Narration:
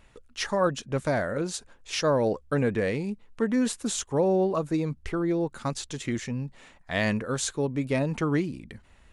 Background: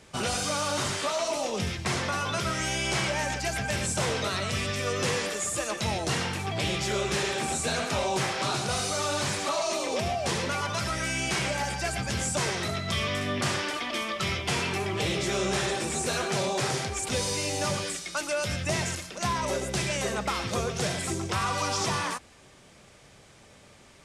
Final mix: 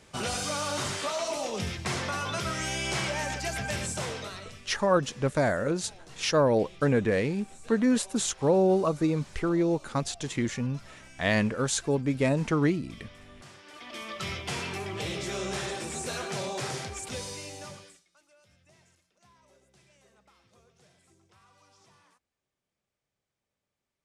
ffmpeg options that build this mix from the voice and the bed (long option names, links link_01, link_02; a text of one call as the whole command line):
ffmpeg -i stem1.wav -i stem2.wav -filter_complex "[0:a]adelay=4300,volume=1dB[link_01];[1:a]volume=14.5dB,afade=type=out:start_time=3.72:duration=0.89:silence=0.1,afade=type=in:start_time=13.64:duration=0.57:silence=0.141254,afade=type=out:start_time=16.85:duration=1.21:silence=0.0398107[link_02];[link_01][link_02]amix=inputs=2:normalize=0" out.wav